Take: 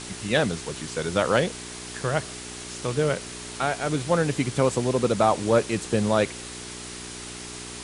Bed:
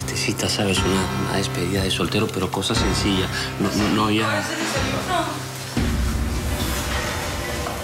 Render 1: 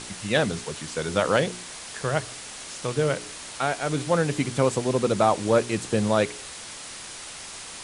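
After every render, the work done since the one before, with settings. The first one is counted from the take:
hum removal 60 Hz, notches 7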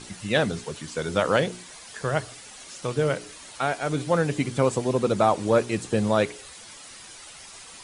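broadband denoise 9 dB, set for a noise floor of −40 dBFS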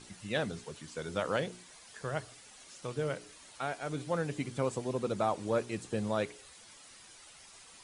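level −10.5 dB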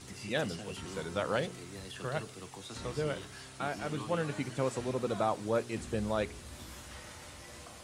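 mix in bed −24.5 dB

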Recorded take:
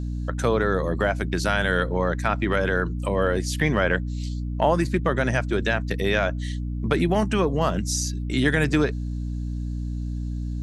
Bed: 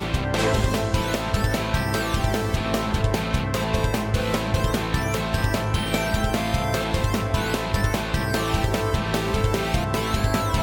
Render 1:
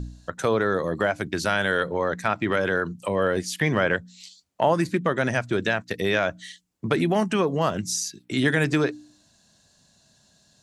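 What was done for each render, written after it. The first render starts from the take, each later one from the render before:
hum removal 60 Hz, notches 5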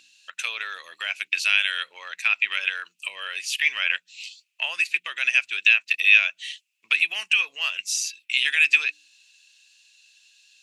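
high-pass with resonance 2,600 Hz, resonance Q 11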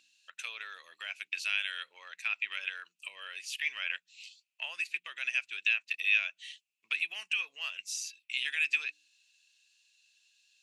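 level −11.5 dB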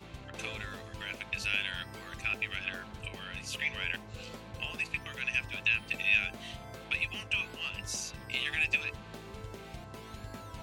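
mix in bed −22.5 dB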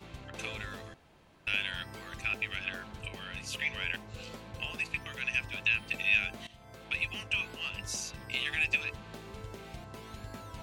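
0:00.94–0:01.47: fill with room tone
0:06.47–0:07.03: fade in, from −16 dB

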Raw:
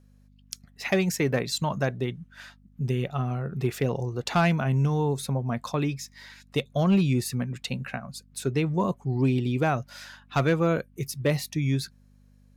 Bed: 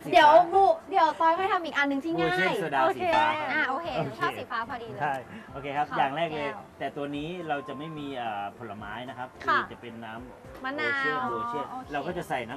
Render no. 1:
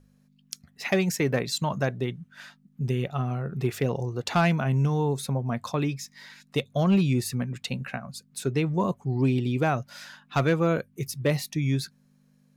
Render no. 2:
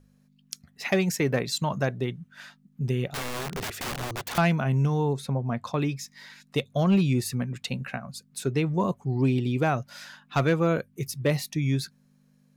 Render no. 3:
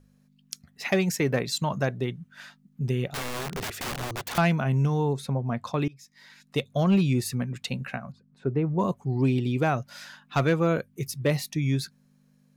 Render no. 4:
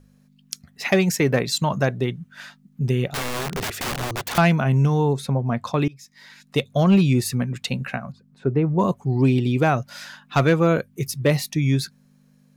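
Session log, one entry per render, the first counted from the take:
hum removal 50 Hz, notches 2
0:03.10–0:04.38: wrap-around overflow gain 27.5 dB; 0:05.13–0:05.74: high-shelf EQ 6,100 Hz −11 dB
0:05.88–0:06.62: fade in, from −23.5 dB; 0:08.12–0:08.79: low-pass filter 1,200 Hz
level +5.5 dB

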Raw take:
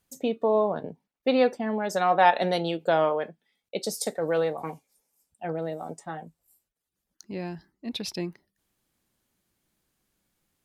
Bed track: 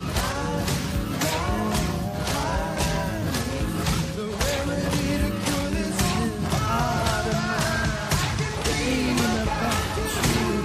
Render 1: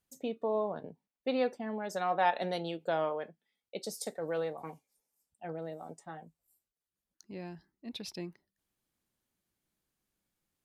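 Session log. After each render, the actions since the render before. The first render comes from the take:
level −9 dB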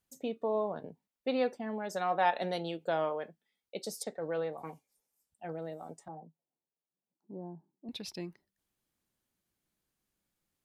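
0:04.03–0:04.53: high-frequency loss of the air 130 metres
0:06.08–0:07.89: elliptic band-pass filter 140–930 Hz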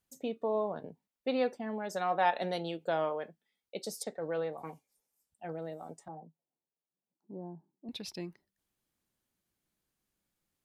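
no processing that can be heard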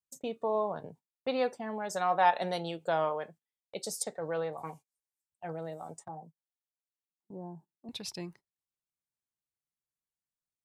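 noise gate −54 dBFS, range −20 dB
octave-band graphic EQ 125/250/1,000/8,000 Hz +6/−4/+5/+8 dB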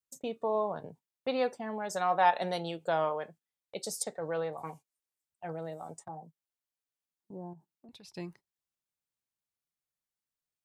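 0:07.53–0:08.16: downward compressor 5 to 1, threshold −51 dBFS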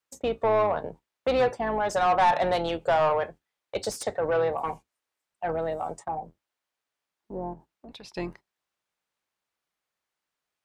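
sub-octave generator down 2 octaves, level 0 dB
mid-hump overdrive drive 22 dB, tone 1,600 Hz, clips at −12.5 dBFS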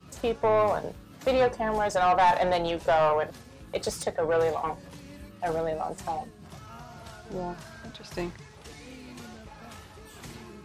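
mix in bed track −21.5 dB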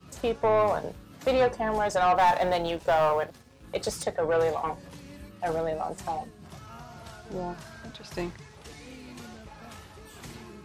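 0:02.16–0:03.64: mu-law and A-law mismatch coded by A

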